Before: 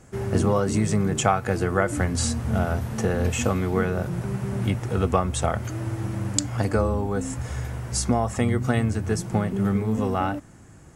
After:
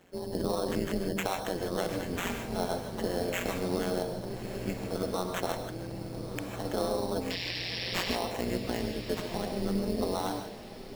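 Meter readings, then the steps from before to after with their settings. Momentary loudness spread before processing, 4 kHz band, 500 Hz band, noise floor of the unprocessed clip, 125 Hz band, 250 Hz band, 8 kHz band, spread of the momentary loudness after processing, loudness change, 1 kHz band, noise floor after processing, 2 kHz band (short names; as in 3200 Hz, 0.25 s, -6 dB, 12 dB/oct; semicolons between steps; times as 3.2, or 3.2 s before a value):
6 LU, 0.0 dB, -5.5 dB, -47 dBFS, -15.0 dB, -8.5 dB, -12.5 dB, 7 LU, -8.5 dB, -8.0 dB, -42 dBFS, -6.0 dB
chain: spectral gate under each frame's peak -25 dB strong; HPF 250 Hz 12 dB/oct; bell 1400 Hz -7 dB 0.59 oct; limiter -18 dBFS, peak gain reduction 14 dB; sample-rate reducer 4800 Hz, jitter 0%; painted sound noise, 7.3–8.16, 1700–5600 Hz -33 dBFS; AM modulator 180 Hz, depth 100%; diffused feedback echo 1.284 s, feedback 42%, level -11 dB; non-linear reverb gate 0.18 s rising, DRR 6 dB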